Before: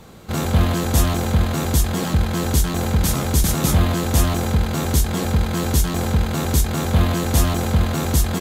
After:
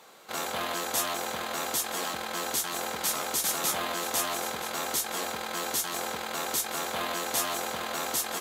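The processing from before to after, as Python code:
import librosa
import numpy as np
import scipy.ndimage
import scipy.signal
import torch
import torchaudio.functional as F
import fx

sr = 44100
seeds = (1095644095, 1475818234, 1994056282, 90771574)

y = scipy.signal.sosfilt(scipy.signal.butter(2, 620.0, 'highpass', fs=sr, output='sos'), x)
y = y + 10.0 ** (-13.0 / 20.0) * np.pad(y, (int(973 * sr / 1000.0), 0))[:len(y)]
y = y * 10.0 ** (-4.0 / 20.0)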